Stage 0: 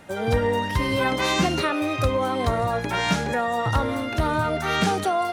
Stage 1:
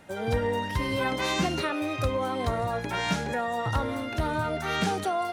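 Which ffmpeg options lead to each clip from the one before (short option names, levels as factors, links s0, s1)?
-af "bandreject=f=1200:w=27,volume=0.562"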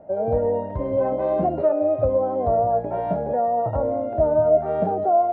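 -af "lowpass=f=630:t=q:w=7.7"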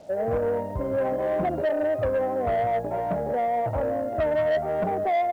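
-af "aresample=16000,asoftclip=type=tanh:threshold=0.119,aresample=44100,acrusher=bits=8:mix=0:aa=0.5,volume=0.891"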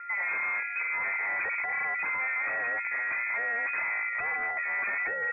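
-af "aeval=exprs='0.0631*(abs(mod(val(0)/0.0631+3,4)-2)-1)':c=same,aeval=exprs='val(0)+0.0158*sin(2*PI*1200*n/s)':c=same,lowpass=f=2200:t=q:w=0.5098,lowpass=f=2200:t=q:w=0.6013,lowpass=f=2200:t=q:w=0.9,lowpass=f=2200:t=q:w=2.563,afreqshift=-2600,volume=0.708"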